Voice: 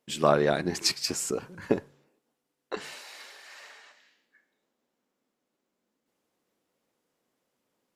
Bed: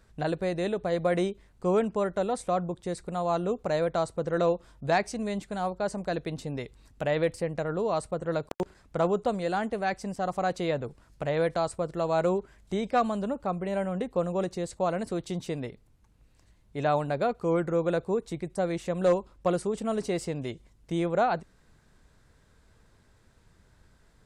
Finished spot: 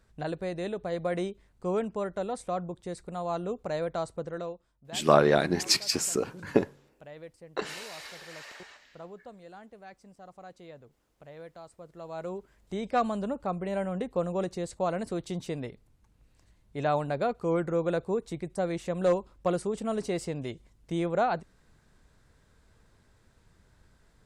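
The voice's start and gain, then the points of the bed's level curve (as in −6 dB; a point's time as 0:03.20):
4.85 s, +2.0 dB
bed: 0:04.19 −4.5 dB
0:04.72 −19.5 dB
0:11.66 −19.5 dB
0:12.98 −1.5 dB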